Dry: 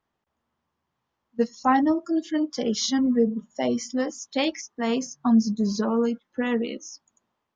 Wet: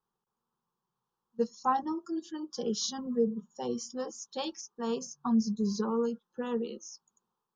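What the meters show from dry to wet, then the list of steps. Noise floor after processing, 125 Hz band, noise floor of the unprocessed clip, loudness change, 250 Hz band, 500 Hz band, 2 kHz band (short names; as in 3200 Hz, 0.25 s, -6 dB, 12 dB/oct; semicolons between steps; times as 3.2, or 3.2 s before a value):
under -85 dBFS, -6.0 dB, -81 dBFS, -8.5 dB, -9.5 dB, -6.5 dB, -15.5 dB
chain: fixed phaser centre 420 Hz, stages 8; gain -4.5 dB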